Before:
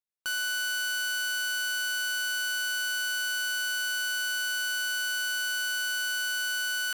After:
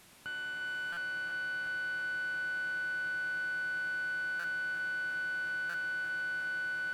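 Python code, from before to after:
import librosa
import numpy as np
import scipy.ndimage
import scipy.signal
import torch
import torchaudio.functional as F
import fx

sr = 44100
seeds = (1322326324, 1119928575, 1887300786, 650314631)

p1 = fx.delta_mod(x, sr, bps=64000, step_db=-43.5)
p2 = scipy.signal.sosfilt(scipy.signal.butter(2, 170.0, 'highpass', fs=sr, output='sos'), p1)
p3 = fx.high_shelf(p2, sr, hz=4900.0, db=9.5)
p4 = fx.dmg_crackle(p3, sr, seeds[0], per_s=310.0, level_db=-44.0)
p5 = fx.bass_treble(p4, sr, bass_db=12, treble_db=-12)
p6 = p5 + fx.echo_multitap(p5, sr, ms=(176, 277, 668), db=(-15.5, -14.0, -6.5), dry=0)
p7 = fx.buffer_glitch(p6, sr, at_s=(0.92, 4.39, 5.69), block=256, repeats=8)
p8 = fx.echo_crushed(p7, sr, ms=353, feedback_pct=80, bits=11, wet_db=-12.0)
y = p8 * librosa.db_to_amplitude(-6.5)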